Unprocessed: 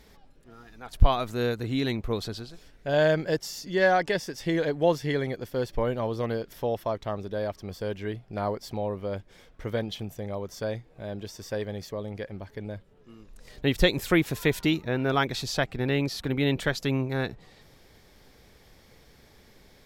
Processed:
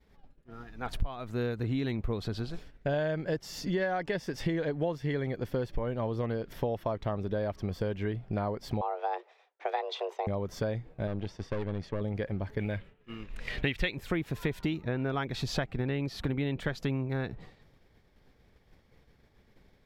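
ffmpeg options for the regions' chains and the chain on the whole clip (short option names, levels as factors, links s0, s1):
-filter_complex "[0:a]asettb=1/sr,asplit=3[s0][s1][s2];[s0]atrim=end=8.814[s3];[s1]atrim=start=8.81:end=10.27,asetpts=PTS-STARTPTS,afade=t=in:d=0.004:c=qsin,afade=t=out:st=1.456:d=0.004:c=qsin,highpass=97,acrossover=split=160 6700:gain=0.126 1 0.0708[s4][s5][s6];[s4][s5][s6]amix=inputs=3:normalize=0,afreqshift=260[s7];[s2]atrim=start=10.266[s8];[s3][s7]acrossfade=d=0.004:c1=hsin:c2=qsin[s9];[s9][s8]acrossfade=d=0.004:c1=qsin:c2=hsin,asettb=1/sr,asplit=3[s10][s11][s12];[s10]atrim=end=11.074[s13];[s11]atrim=start=11.07:end=12.01,asetpts=PTS-STARTPTS,afade=t=in:d=0.004:c=qsin,afade=t=out:st=0.936:d=0.004:c=qsin,lowpass=4800,aeval=exprs='(tanh(39.8*val(0)+0.7)-tanh(0.7))/39.8':c=same[s14];[s12]atrim=start=12.006[s15];[s13][s14]acrossfade=d=0.004:c1=hsin:c2=qsin[s16];[s16][s15]acrossfade=d=0.004:c1=qsin:c2=hsin,asettb=1/sr,asplit=3[s17][s18][s19];[s17]atrim=end=12.594[s20];[s18]atrim=start=12.59:end=13.95,asetpts=PTS-STARTPTS,afade=t=in:d=0.004:c=qsin,afade=t=out:st=1.356:d=0.004:c=qsin,equalizer=f=2400:w=0.89:g=14,acrusher=bits=9:mode=log:mix=0:aa=0.000001[s21];[s19]atrim=start=13.946[s22];[s20][s21]acrossfade=d=0.004:c1=hsin:c2=qsin[s23];[s23][s22]acrossfade=d=0.004:c1=qsin:c2=hsin,agate=range=0.0224:threshold=0.00631:ratio=3:detection=peak,bass=f=250:g=4,treble=f=4000:g=-10,acompressor=threshold=0.02:ratio=8,volume=2"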